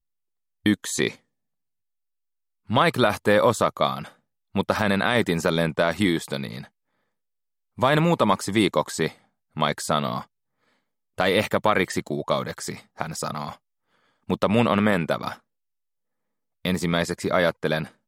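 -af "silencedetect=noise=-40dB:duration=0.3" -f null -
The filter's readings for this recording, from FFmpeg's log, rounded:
silence_start: 0.00
silence_end: 0.66 | silence_duration: 0.66
silence_start: 1.15
silence_end: 2.69 | silence_duration: 1.54
silence_start: 4.09
silence_end: 4.55 | silence_duration: 0.46
silence_start: 6.66
silence_end: 7.78 | silence_duration: 1.12
silence_start: 9.12
silence_end: 9.56 | silence_duration: 0.44
silence_start: 10.24
silence_end: 11.18 | silence_duration: 0.94
silence_start: 13.55
silence_end: 14.29 | silence_duration: 0.74
silence_start: 15.36
silence_end: 16.65 | silence_duration: 1.30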